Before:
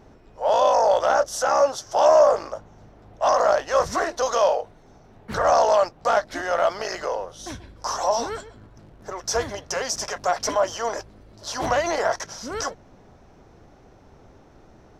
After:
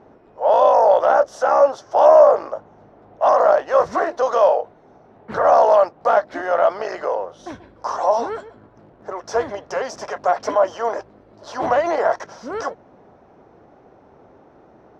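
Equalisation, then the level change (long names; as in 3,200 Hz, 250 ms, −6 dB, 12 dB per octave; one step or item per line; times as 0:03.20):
resonant band-pass 890 Hz, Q 0.52
tilt shelving filter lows +4 dB
+4.0 dB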